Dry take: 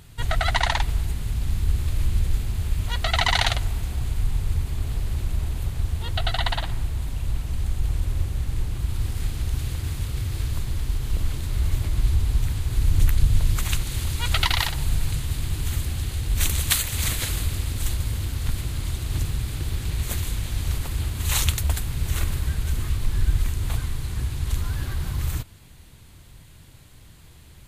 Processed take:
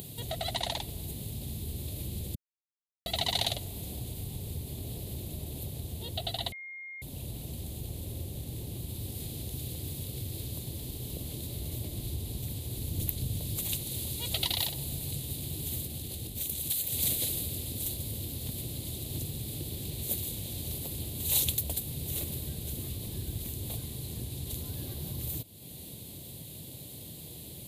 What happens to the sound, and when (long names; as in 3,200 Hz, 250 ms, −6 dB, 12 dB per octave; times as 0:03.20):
0:02.35–0:03.06: silence
0:06.52–0:07.02: beep over 2,130 Hz −24 dBFS
0:15.83–0:16.93: downward compressor 5 to 1, threshold −25 dBFS
whole clip: high-pass filter 150 Hz 12 dB per octave; upward compression, threshold −30 dBFS; drawn EQ curve 590 Hz 0 dB, 1,400 Hz −23 dB, 3,800 Hz 0 dB, 5,700 Hz −7 dB, 8,600 Hz −1 dB, 12,000 Hz +7 dB; level −3 dB